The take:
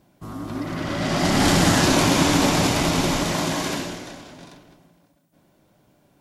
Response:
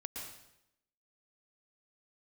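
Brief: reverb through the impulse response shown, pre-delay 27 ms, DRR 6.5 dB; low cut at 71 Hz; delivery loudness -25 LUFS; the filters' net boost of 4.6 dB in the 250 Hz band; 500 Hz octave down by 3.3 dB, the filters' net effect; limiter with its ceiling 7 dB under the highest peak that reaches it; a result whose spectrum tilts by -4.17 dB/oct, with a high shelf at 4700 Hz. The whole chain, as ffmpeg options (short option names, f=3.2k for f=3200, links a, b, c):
-filter_complex "[0:a]highpass=71,equalizer=f=250:t=o:g=8,equalizer=f=500:t=o:g=-8,highshelf=f=4.7k:g=3,alimiter=limit=-10.5dB:level=0:latency=1,asplit=2[a][b];[1:a]atrim=start_sample=2205,adelay=27[c];[b][c]afir=irnorm=-1:irlink=0,volume=-5.5dB[d];[a][d]amix=inputs=2:normalize=0,volume=-5.5dB"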